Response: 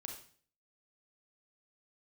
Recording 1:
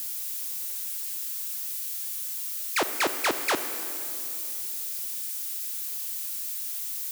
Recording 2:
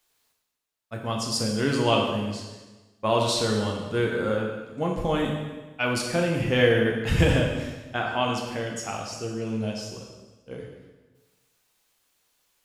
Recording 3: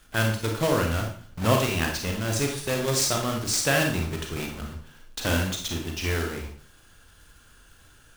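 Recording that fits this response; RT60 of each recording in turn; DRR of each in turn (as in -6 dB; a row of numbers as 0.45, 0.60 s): 3; 2.8, 1.2, 0.50 s; 9.0, -0.5, 1.5 dB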